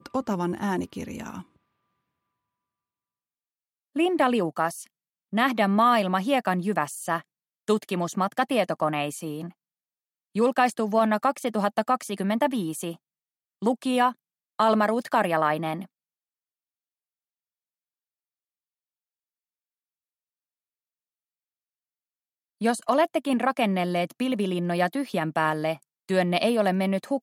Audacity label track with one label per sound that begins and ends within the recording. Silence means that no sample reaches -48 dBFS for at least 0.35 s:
3.950000	4.870000	sound
5.330000	7.220000	sound
7.680000	9.510000	sound
10.350000	12.960000	sound
13.620000	14.130000	sound
14.590000	15.860000	sound